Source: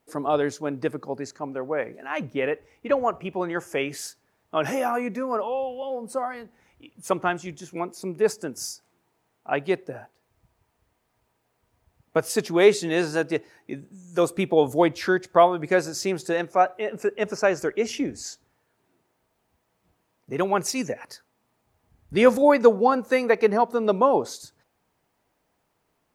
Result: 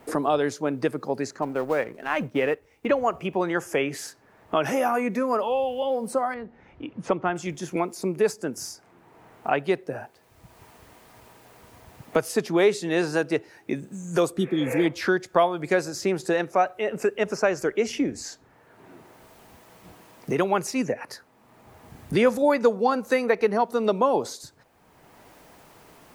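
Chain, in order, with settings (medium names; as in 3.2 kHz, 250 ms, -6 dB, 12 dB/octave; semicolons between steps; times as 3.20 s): 1.42–2.86 s: companding laws mixed up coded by A; 6.34–7.36 s: tape spacing loss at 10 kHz 35 dB; 14.40–14.83 s: spectral replace 390–2800 Hz both; three bands compressed up and down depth 70%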